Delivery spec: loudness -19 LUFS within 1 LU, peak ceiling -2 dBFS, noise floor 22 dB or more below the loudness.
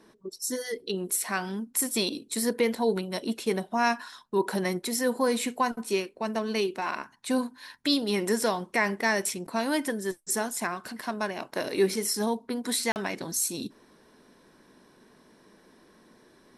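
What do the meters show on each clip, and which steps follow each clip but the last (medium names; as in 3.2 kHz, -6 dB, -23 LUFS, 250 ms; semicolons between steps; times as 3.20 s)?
dropouts 1; longest dropout 39 ms; loudness -29.0 LUFS; peak level -10.5 dBFS; loudness target -19.0 LUFS
-> interpolate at 12.92 s, 39 ms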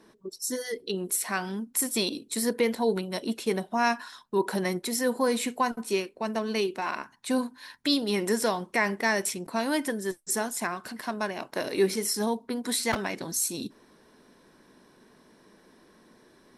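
dropouts 0; loudness -29.0 LUFS; peak level -10.5 dBFS; loudness target -19.0 LUFS
-> trim +10 dB; peak limiter -2 dBFS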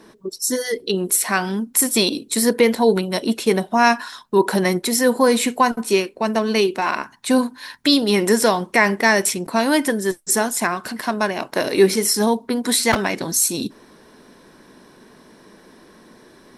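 loudness -19.0 LUFS; peak level -2.0 dBFS; noise floor -50 dBFS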